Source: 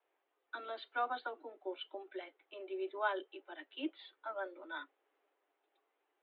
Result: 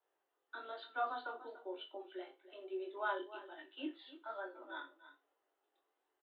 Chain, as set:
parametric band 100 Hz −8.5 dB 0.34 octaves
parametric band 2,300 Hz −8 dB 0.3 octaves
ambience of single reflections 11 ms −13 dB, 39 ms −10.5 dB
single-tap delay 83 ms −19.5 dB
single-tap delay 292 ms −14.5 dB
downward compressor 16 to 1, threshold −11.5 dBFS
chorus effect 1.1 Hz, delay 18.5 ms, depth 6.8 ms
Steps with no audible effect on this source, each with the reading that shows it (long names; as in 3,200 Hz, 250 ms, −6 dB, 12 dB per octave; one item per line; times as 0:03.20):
parametric band 100 Hz: nothing at its input below 240 Hz
downward compressor, threshold −11.5 dBFS: peak of its input −21.5 dBFS